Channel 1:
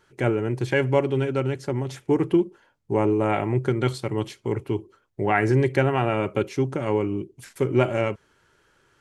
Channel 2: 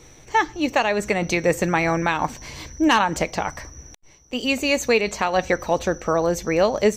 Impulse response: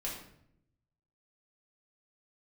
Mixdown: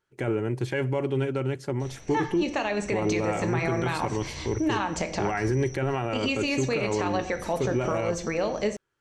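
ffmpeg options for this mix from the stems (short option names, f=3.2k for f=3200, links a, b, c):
-filter_complex "[0:a]agate=range=-15dB:threshold=-55dB:ratio=16:detection=peak,volume=-2.5dB[a];[1:a]lowpass=f=8.4k:w=0.5412,lowpass=f=8.4k:w=1.3066,acompressor=threshold=-23dB:ratio=4,adelay=1800,volume=-4dB,asplit=2[b][c];[c]volume=-5.5dB[d];[2:a]atrim=start_sample=2205[e];[d][e]afir=irnorm=-1:irlink=0[f];[a][b][f]amix=inputs=3:normalize=0,alimiter=limit=-17dB:level=0:latency=1:release=15"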